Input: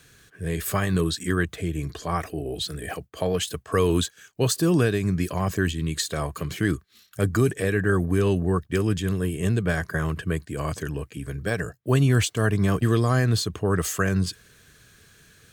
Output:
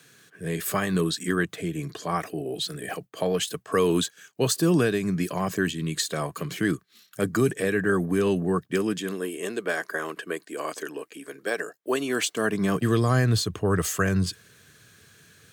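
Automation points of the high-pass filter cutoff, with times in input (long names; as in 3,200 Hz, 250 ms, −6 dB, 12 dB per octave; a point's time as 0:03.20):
high-pass filter 24 dB per octave
0:08.62 140 Hz
0:09.38 300 Hz
0:12.05 300 Hz
0:13.22 84 Hz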